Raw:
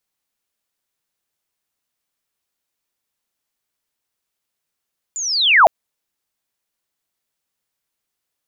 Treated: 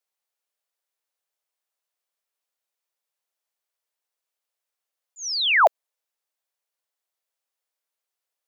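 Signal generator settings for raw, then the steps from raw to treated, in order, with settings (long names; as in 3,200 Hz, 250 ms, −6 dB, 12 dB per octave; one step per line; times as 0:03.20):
glide linear 7,200 Hz → 570 Hz −23 dBFS → −4.5 dBFS 0.51 s
volume swells 109 ms
four-pole ladder high-pass 410 Hz, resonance 30%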